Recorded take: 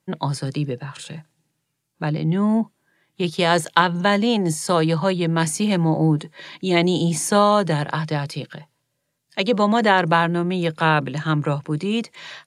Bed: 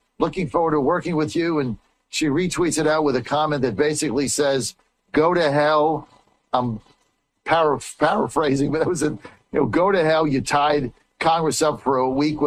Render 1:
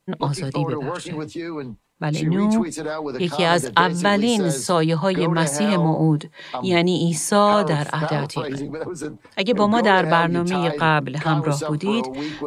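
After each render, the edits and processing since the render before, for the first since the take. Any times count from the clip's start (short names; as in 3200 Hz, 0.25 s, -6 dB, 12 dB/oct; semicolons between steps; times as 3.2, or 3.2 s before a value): add bed -8.5 dB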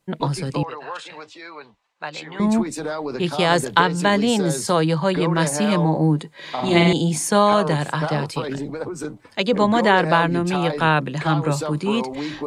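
0.63–2.4 three-band isolator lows -23 dB, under 570 Hz, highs -20 dB, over 6500 Hz; 6.36–6.93 flutter echo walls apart 7.9 m, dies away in 0.95 s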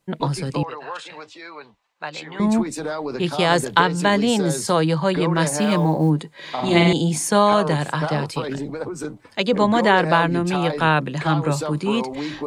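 5.48–6.1 companded quantiser 8-bit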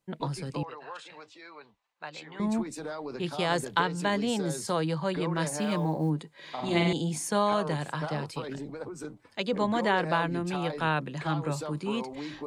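gain -10 dB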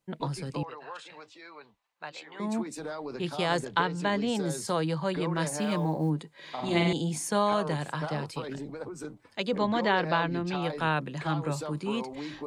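2.11–2.73 HPF 480 Hz -> 140 Hz; 3.59–4.35 air absorption 56 m; 9.58–10.63 resonant high shelf 6800 Hz -12 dB, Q 1.5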